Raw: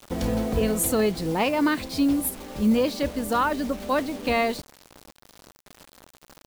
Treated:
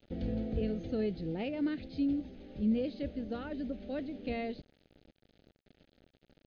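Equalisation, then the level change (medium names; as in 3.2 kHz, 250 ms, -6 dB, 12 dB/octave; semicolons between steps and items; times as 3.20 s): brick-wall FIR low-pass 6.5 kHz; peaking EQ 2.2 kHz -9 dB 2.1 oct; static phaser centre 2.5 kHz, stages 4; -8.0 dB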